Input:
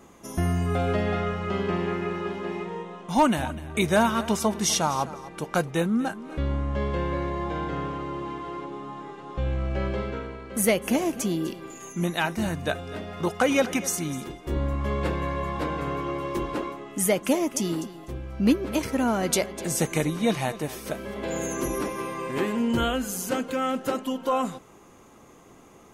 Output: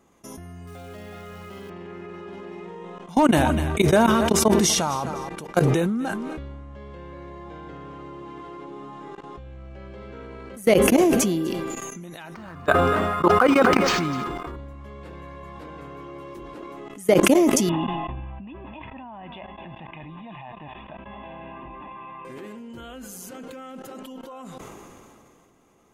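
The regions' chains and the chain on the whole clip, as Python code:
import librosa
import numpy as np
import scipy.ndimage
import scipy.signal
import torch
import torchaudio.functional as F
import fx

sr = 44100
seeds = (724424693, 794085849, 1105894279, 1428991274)

y = fx.chain(x, sr, fx.high_shelf(hz=3500.0, db=9.0),
    fx.quant_float(bits=2), at=(0.67, 1.7))
y = fx.chain(y, sr, fx.peak_eq(hz=1200.0, db=15.0, octaves=0.85),
    fx.resample_linear(factor=4), at=(12.34, 14.56))
y = fx.chain(y, sr, fx.cheby_ripple(hz=3500.0, ripple_db=9),
    fx.comb(ms=1.1, depth=0.73), at=(17.69, 22.25))
y = fx.level_steps(y, sr, step_db=21)
y = fx.dynamic_eq(y, sr, hz=370.0, q=0.92, threshold_db=-43.0, ratio=4.0, max_db=7)
y = fx.sustainer(y, sr, db_per_s=22.0)
y = y * 10.0 ** (2.0 / 20.0)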